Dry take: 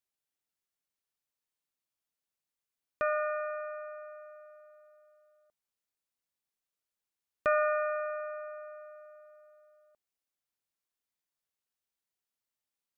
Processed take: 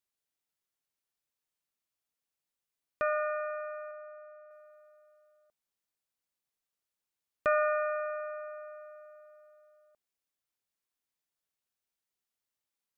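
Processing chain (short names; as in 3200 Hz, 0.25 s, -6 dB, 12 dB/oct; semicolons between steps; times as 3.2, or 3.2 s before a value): 3.91–4.51 air absorption 310 m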